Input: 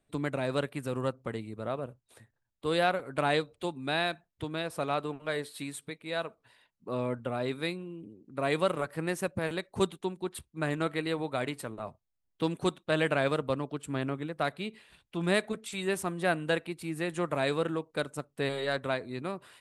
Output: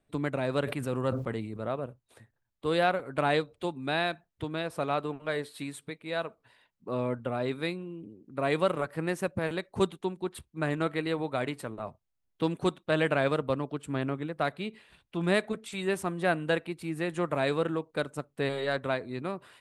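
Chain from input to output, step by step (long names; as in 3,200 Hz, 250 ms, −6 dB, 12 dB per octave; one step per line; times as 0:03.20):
high-shelf EQ 4,100 Hz −6 dB
0:00.63–0:01.65: level that may fall only so fast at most 62 dB per second
level +1.5 dB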